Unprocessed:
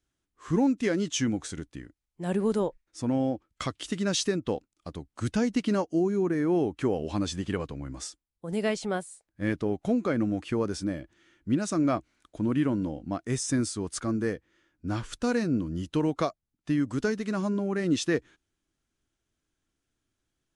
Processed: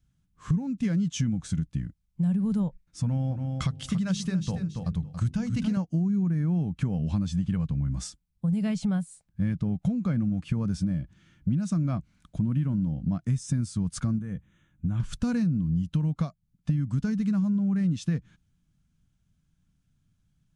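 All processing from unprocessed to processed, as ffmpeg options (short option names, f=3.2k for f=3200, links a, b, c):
-filter_complex "[0:a]asettb=1/sr,asplit=3[a][b][c];[a]atrim=end=3.024[d];[b]atrim=start=3.02:end=5.77,asetpts=PTS-STARTPTS,afade=t=in:d=0.004:c=qsin,afade=t=out:st=2.746:d=0.004:c=qsin,equalizer=f=240:w=1.3:g=-5.5,bandreject=f=50:t=h:w=6,bandreject=f=100:t=h:w=6,bandreject=f=150:t=h:w=6,bandreject=f=200:t=h:w=6,bandreject=f=250:t=h:w=6,bandreject=f=300:t=h:w=6,bandreject=f=350:t=h:w=6,bandreject=f=400:t=h:w=6,bandreject=f=450:t=h:w=6,aecho=1:1:280|560:0.316|0.0506,atrim=end_sample=121275[e];[c]atrim=start=5.766[f];[d][e]acrossfade=d=0.004:c1=hsin:c2=qsin[g];[g][f]acrossfade=d=0.004:c1=qsin:c2=hsin,asettb=1/sr,asplit=3[h][i][j];[h]atrim=end=14.184[k];[i]atrim=start=14.18:end=15,asetpts=PTS-STARTPTS,afade=t=in:d=0.004:c=qsin,afade=t=out:st=0.816:d=0.004:c=qsin,acompressor=threshold=-37dB:ratio=3:attack=3.2:release=140:knee=1:detection=peak,asuperstop=centerf=4800:order=12:qfactor=2.5[l];[j]atrim=start=14.996[m];[k][l]acrossfade=d=0.004:c1=hsin:c2=qsin[n];[n][m]acrossfade=d=0.004:c1=qsin:c2=hsin,lowshelf=f=250:t=q:w=3:g=13,bandreject=f=1.9k:w=17,acompressor=threshold=-24dB:ratio=6"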